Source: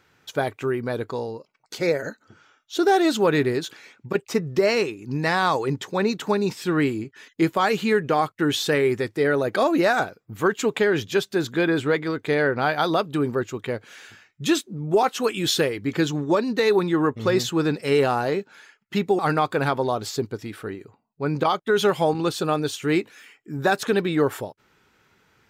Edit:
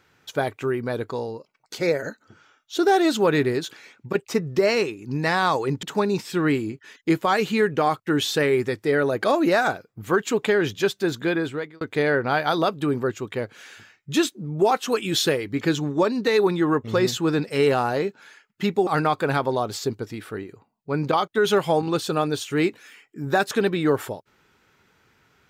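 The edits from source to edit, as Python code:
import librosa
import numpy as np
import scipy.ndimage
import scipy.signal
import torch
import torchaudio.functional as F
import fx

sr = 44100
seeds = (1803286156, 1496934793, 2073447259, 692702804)

y = fx.edit(x, sr, fx.cut(start_s=5.83, length_s=0.32),
    fx.fade_out_span(start_s=11.3, length_s=0.83, curve='qsin'), tone=tone)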